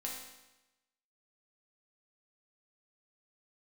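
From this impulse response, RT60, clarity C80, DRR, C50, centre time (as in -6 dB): 1.0 s, 5.0 dB, -3.0 dB, 2.5 dB, 52 ms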